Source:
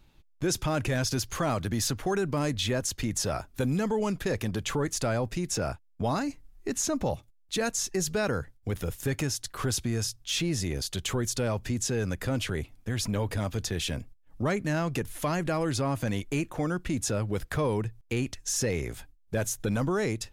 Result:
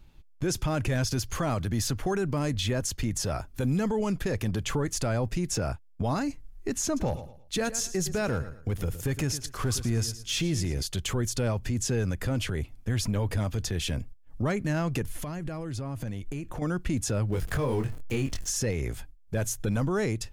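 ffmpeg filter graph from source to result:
-filter_complex "[0:a]asettb=1/sr,asplit=3[s0][s1][s2];[s0]atrim=end=6.854[s3];[s1]atrim=start=6.85:end=10.83,asetpts=PTS-STARTPTS,afade=t=in:d=0.004:c=qsin,afade=t=out:st=3.976:d=0.004:c=qsin,aecho=1:1:113|226|339:0.2|0.0579|0.0168,atrim=end_sample=175518,volume=11.2,asoftclip=hard,volume=0.0891[s4];[s2]atrim=start=10.826[s5];[s3][s4]acrossfade=d=0.004:c1=hsin:c2=qsin[s6];[s6][s5]acrossfade=d=0.004:c1=qsin:c2=hsin,asettb=1/sr,asplit=3[s7][s8][s9];[s7]atrim=end=15.164[s10];[s8]atrim=start=15.16:end=16.62,asetpts=PTS-STARTPTS,afade=t=in:d=0.004:c=qsin,afade=t=out:st=1.456:d=0.004:c=qsin,lowshelf=f=330:g=5,acompressor=threshold=0.0178:ratio=5:attack=3.2:release=140:knee=1:detection=peak[s11];[s9]atrim=start=16.616[s12];[s10][s11]acrossfade=d=0.004:c1=hsin:c2=qsin[s13];[s13][s12]acrossfade=d=0.004:c1=qsin:c2=hsin,asettb=1/sr,asplit=3[s14][s15][s16];[s14]atrim=end=17.324[s17];[s15]atrim=start=17.32:end=18.5,asetpts=PTS-STARTPTS,afade=t=in:d=0.004:c=qsin,afade=t=out:st=1.176:d=0.004:c=qsin,aeval=exprs='val(0)+0.5*0.00944*sgn(val(0))':c=same,asplit=2[s18][s19];[s19]adelay=22,volume=0.631[s20];[s18][s20]amix=inputs=2:normalize=0,atrim=end_sample=52038[s21];[s16]atrim=start=18.496[s22];[s17][s21]acrossfade=d=0.004:c1=hsin:c2=qsin[s23];[s23][s22]acrossfade=d=0.004:c1=qsin:c2=hsin,lowshelf=f=140:g=7.5,bandreject=f=3800:w=23,alimiter=limit=0.1:level=0:latency=1:release=90"

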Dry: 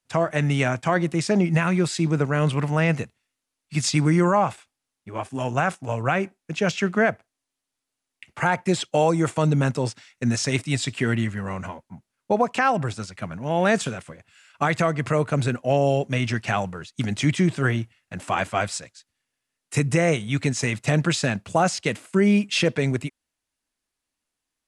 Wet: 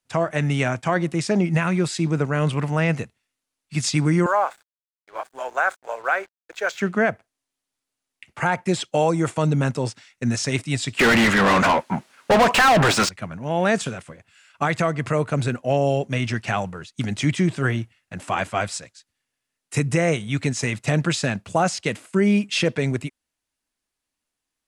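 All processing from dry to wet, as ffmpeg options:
-filter_complex "[0:a]asettb=1/sr,asplit=3[s0][s1][s2];[s0]atrim=end=4.264[s3];[s1]atrim=start=4.26:end=6.81,asetpts=PTS-STARTPTS,afade=t=in:d=0.004:c=qsin,afade=t=out:st=2.546:d=0.004:c=qsin,highpass=f=460:w=0.5412,highpass=f=460:w=1.3066,equalizer=f=1500:t=q:w=4:g=7,equalizer=f=2800:t=q:w=4:g=-9,equalizer=f=5400:t=q:w=4:g=-7,lowpass=f=8900:w=0.5412,lowpass=f=8900:w=1.3066,aeval=exprs='sgn(val(0))*max(abs(val(0))-0.00355,0)':c=same[s4];[s2]atrim=start=6.806[s5];[s3][s4]acrossfade=d=0.004:c1=hsin:c2=qsin[s6];[s6][s5]acrossfade=d=0.004:c1=qsin:c2=hsin,asettb=1/sr,asplit=3[s7][s8][s9];[s7]atrim=end=10.994[s10];[s8]atrim=start=10.99:end=13.09,asetpts=PTS-STARTPTS,afade=t=in:d=0.004:c=qsin,afade=t=out:st=2.096:d=0.004:c=qsin,equalizer=f=92:t=o:w=0.64:g=-6.5,asplit=2[s11][s12];[s12]highpass=f=720:p=1,volume=63.1,asoftclip=type=tanh:threshold=0.376[s13];[s11][s13]amix=inputs=2:normalize=0,lowpass=f=3300:p=1,volume=0.501[s14];[s9]atrim=start=13.086[s15];[s10][s14]acrossfade=d=0.004:c1=hsin:c2=qsin[s16];[s16][s15]acrossfade=d=0.004:c1=qsin:c2=hsin"

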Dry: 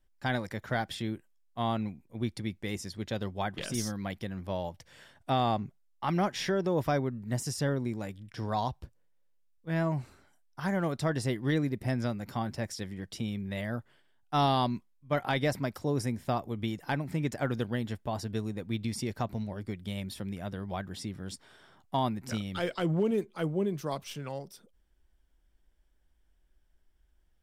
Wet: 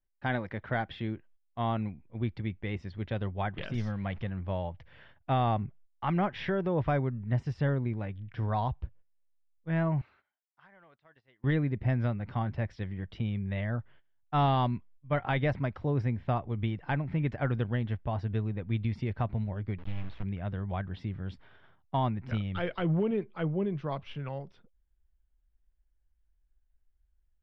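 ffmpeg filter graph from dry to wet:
-filter_complex "[0:a]asettb=1/sr,asplit=3[s0][s1][s2];[s0]atrim=end=3.744[s3];[s1]atrim=start=3.74:end=4.3,asetpts=PTS-STARTPTS,afade=t=in:d=0.004:c=qsin,afade=t=out:st=0.556:d=0.004:c=qsin,aeval=exprs='val(0)+0.5*0.00447*sgn(val(0))':c=same,equalizer=f=330:t=o:w=0.29:g=-7.5[s4];[s2]atrim=start=4.296[s5];[s3][s4]acrossfade=d=0.004:c1=hsin:c2=qsin[s6];[s6][s5]acrossfade=d=0.004:c1=qsin:c2=hsin,asettb=1/sr,asplit=3[s7][s8][s9];[s7]atrim=end=10.014[s10];[s8]atrim=start=10.01:end=11.44,asetpts=PTS-STARTPTS,afade=t=in:d=0.004:c=qsin,afade=t=out:st=1.426:d=0.004:c=qsin,highpass=f=1300:p=1,acompressor=threshold=0.002:ratio=8:attack=3.2:release=140:knee=1:detection=peak[s11];[s9]atrim=start=11.436[s12];[s10][s11]acrossfade=d=0.004:c1=hsin:c2=qsin[s13];[s13][s12]acrossfade=d=0.004:c1=qsin:c2=hsin,asettb=1/sr,asplit=3[s14][s15][s16];[s14]atrim=end=19.784[s17];[s15]atrim=start=19.78:end=20.23,asetpts=PTS-STARTPTS,afade=t=in:d=0.004:c=qsin,afade=t=out:st=0.446:d=0.004:c=qsin,lowpass=8300,bandreject=f=290:w=8,acrusher=bits=5:dc=4:mix=0:aa=0.000001[s18];[s16]atrim=start=20.226[s19];[s17][s18]acrossfade=d=0.004:c1=hsin:c2=qsin[s20];[s20][s19]acrossfade=d=0.004:c1=qsin:c2=hsin,lowpass=f=3000:w=0.5412,lowpass=f=3000:w=1.3066,agate=range=0.224:threshold=0.00126:ratio=16:detection=peak,asubboost=boost=3:cutoff=130"

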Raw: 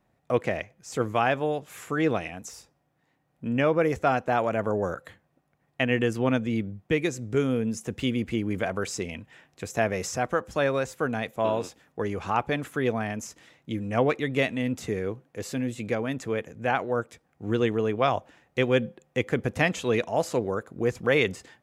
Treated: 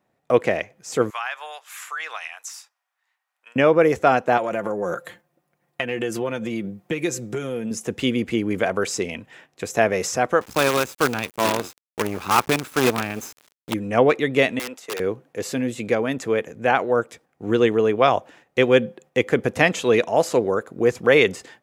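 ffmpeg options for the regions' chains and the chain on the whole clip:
-filter_complex "[0:a]asettb=1/sr,asplit=3[s0][s1][s2];[s0]atrim=end=1.104[s3];[s1]atrim=start=1.1:end=3.56,asetpts=PTS-STARTPTS,afade=t=in:d=0.004:c=qsin,afade=t=out:st=2.456:d=0.004:c=qsin,highpass=f=1000:w=0.5412,highpass=f=1000:w=1.3066,acompressor=threshold=0.0178:ratio=2:attack=3.2:release=140:knee=1:detection=peak[s4];[s2]atrim=start=3.556[s5];[s3][s4]acrossfade=d=0.004:c1=hsin:c2=qsin[s6];[s6][s5]acrossfade=d=0.004:c1=qsin:c2=hsin,asettb=1/sr,asplit=3[s7][s8][s9];[s7]atrim=end=4.374[s10];[s8]atrim=start=4.37:end=7.71,asetpts=PTS-STARTPTS,afade=t=in:d=0.004:c=qsin,afade=t=out:st=3.336:d=0.004:c=qsin,highshelf=f=8500:g=7.5,acompressor=threshold=0.0447:ratio=10:attack=3.2:release=140:knee=1:detection=peak,aecho=1:1:5.7:0.53,atrim=end_sample=147294[s11];[s9]atrim=start=7.706[s12];[s10][s11]acrossfade=d=0.004:c1=hsin:c2=qsin[s13];[s13][s12]acrossfade=d=0.004:c1=qsin:c2=hsin,asettb=1/sr,asplit=3[s14][s15][s16];[s14]atrim=end=10.414[s17];[s15]atrim=start=10.41:end=13.74,asetpts=PTS-STARTPTS,afade=t=in:d=0.004:c=qsin,afade=t=out:st=3.326:d=0.004:c=qsin,aecho=1:1:0.8:0.5,atrim=end_sample=146853,acrusher=bits=5:dc=4:mix=0:aa=0.000001[s18];[s16]atrim=start=13.736[s19];[s17][s18]acrossfade=d=0.004:c1=hsin:c2=qsin[s20];[s20][s19]acrossfade=d=0.004:c1=qsin:c2=hsin,asettb=1/sr,asplit=3[s21][s22][s23];[s21]atrim=end=14.594[s24];[s22]atrim=start=14.59:end=15,asetpts=PTS-STARTPTS,afade=t=in:d=0.004:c=qsin,afade=t=out:st=0.406:d=0.004:c=qsin,agate=range=0.0224:threshold=0.02:ratio=3:release=100:detection=peak,highpass=590,aeval=exprs='(mod(29.9*val(0)+1,2)-1)/29.9':c=same[s25];[s23]atrim=start=14.996[s26];[s24][s25]acrossfade=d=0.004:c1=hsin:c2=qsin[s27];[s27][s26]acrossfade=d=0.004:c1=qsin:c2=hsin,agate=range=0.501:threshold=0.00178:ratio=16:detection=peak,highpass=f=210:p=1,equalizer=f=430:t=o:w=0.79:g=2.5,volume=2.11"

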